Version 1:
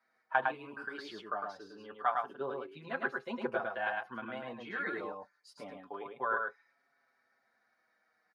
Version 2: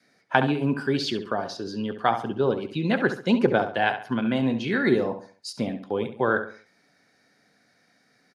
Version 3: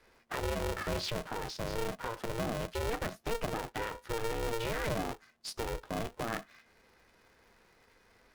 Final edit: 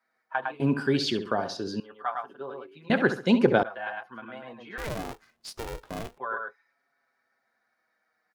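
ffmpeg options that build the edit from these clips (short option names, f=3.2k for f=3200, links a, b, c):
-filter_complex "[1:a]asplit=2[a][b];[0:a]asplit=4[c][d][e][f];[c]atrim=end=0.602[g];[a]atrim=start=0.598:end=1.802[h];[d]atrim=start=1.798:end=2.902[i];[b]atrim=start=2.898:end=3.632[j];[e]atrim=start=3.628:end=4.782[k];[2:a]atrim=start=4.778:end=6.182[l];[f]atrim=start=6.178[m];[g][h]acrossfade=d=0.004:c1=hsin:c2=hsin[n];[n][i]acrossfade=d=0.004:c1=hsin:c2=hsin[o];[o][j]acrossfade=d=0.004:c1=hsin:c2=hsin[p];[p][k]acrossfade=d=0.004:c1=hsin:c2=hsin[q];[q][l]acrossfade=d=0.004:c1=hsin:c2=hsin[r];[r][m]acrossfade=d=0.004:c1=hsin:c2=hsin"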